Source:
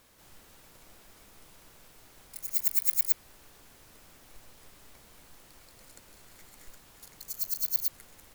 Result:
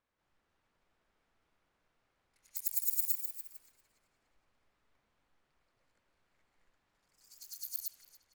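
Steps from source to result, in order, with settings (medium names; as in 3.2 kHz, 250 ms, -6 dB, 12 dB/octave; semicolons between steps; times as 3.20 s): pre-emphasis filter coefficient 0.9; level-controlled noise filter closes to 1.4 kHz, open at -19.5 dBFS; on a send: tape echo 289 ms, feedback 66%, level -10.5 dB, low-pass 3.9 kHz; on the sum: ever faster or slower copies 315 ms, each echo +1 st, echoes 3, each echo -6 dB; trim -4 dB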